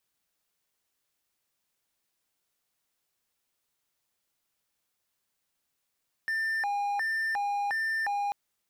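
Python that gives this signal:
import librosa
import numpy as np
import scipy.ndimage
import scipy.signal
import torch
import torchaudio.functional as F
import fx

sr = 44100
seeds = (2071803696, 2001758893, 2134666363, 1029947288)

y = fx.siren(sr, length_s=2.04, kind='hi-lo', low_hz=812.0, high_hz=1790.0, per_s=1.4, wave='triangle', level_db=-25.0)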